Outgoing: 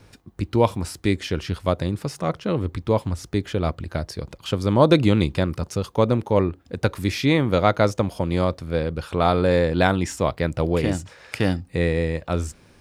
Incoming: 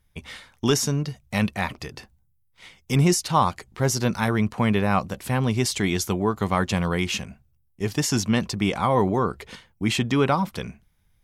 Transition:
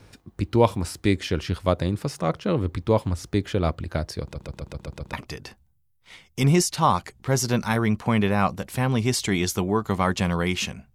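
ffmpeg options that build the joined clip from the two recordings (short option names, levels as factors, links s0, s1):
-filter_complex "[0:a]apad=whole_dur=10.94,atrim=end=10.94,asplit=7[s0][s1][s2][s3][s4][s5][s6];[s0]atrim=end=4.352[s7];[s1]atrim=start=4.218:end=4.352[s8];[s2]atrim=start=4.218:end=4.352[s9];[s3]atrim=start=4.218:end=4.352[s10];[s4]atrim=start=4.218:end=4.352[s11];[s5]atrim=start=4.218:end=4.352[s12];[s6]atrim=start=4.218:end=4.352[s13];[1:a]atrim=start=1.648:end=7.46[s14];[s7][s8]acrossfade=d=0.004:c1=hsin:c2=hsin[s15];[s15][s9]acrossfade=d=0.004:c1=hsin:c2=hsin[s16];[s16][s10]acrossfade=d=0.004:c1=hsin:c2=hsin[s17];[s17][s11]acrossfade=d=0.004:c1=hsin:c2=hsin[s18];[s18][s12]acrossfade=d=0.004:c1=hsin:c2=hsin[s19];[s19][s13]acrossfade=d=0.004:c1=hsin:c2=hsin[s20];[s20][s14]acrossfade=d=0.004:c1=hsin:c2=hsin"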